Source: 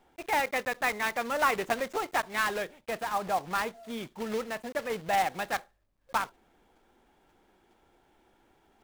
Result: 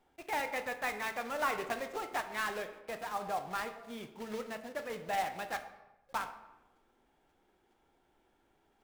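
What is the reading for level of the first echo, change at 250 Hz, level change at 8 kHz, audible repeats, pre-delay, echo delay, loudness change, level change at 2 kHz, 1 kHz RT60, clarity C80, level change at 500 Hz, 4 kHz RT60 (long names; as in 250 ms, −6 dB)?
no echo audible, −7.0 dB, −7.0 dB, no echo audible, 6 ms, no echo audible, −6.5 dB, −7.0 dB, 0.95 s, 12.5 dB, −6.5 dB, 0.65 s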